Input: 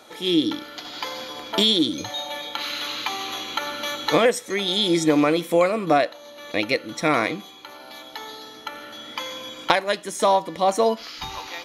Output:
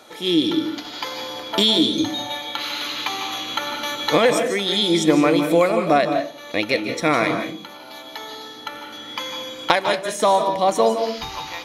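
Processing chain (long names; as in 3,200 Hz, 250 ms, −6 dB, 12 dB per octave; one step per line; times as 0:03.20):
on a send: high-pass filter 85 Hz + convolution reverb RT60 0.40 s, pre-delay 147 ms, DRR 6.5 dB
on the sum: level +1.5 dB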